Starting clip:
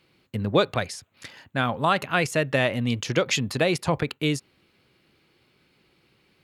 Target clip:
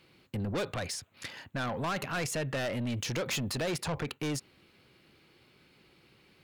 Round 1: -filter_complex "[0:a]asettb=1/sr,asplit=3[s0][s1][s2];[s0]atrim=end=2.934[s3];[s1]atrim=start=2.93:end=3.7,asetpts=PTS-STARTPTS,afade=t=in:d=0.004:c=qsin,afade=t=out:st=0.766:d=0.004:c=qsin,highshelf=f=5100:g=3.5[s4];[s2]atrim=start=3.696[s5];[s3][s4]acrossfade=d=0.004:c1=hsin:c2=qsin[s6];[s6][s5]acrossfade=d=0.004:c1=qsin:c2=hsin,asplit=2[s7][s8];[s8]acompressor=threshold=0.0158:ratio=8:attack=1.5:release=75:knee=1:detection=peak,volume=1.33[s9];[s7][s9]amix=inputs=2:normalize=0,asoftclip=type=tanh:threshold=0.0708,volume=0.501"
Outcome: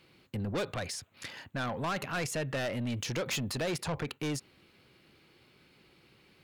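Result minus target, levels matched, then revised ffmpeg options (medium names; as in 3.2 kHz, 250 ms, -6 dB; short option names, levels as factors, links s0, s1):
compression: peak gain reduction +6 dB
-filter_complex "[0:a]asettb=1/sr,asplit=3[s0][s1][s2];[s0]atrim=end=2.934[s3];[s1]atrim=start=2.93:end=3.7,asetpts=PTS-STARTPTS,afade=t=in:d=0.004:c=qsin,afade=t=out:st=0.766:d=0.004:c=qsin,highshelf=f=5100:g=3.5[s4];[s2]atrim=start=3.696[s5];[s3][s4]acrossfade=d=0.004:c1=hsin:c2=qsin[s6];[s6][s5]acrossfade=d=0.004:c1=qsin:c2=hsin,asplit=2[s7][s8];[s8]acompressor=threshold=0.0355:ratio=8:attack=1.5:release=75:knee=1:detection=peak,volume=1.33[s9];[s7][s9]amix=inputs=2:normalize=0,asoftclip=type=tanh:threshold=0.0708,volume=0.501"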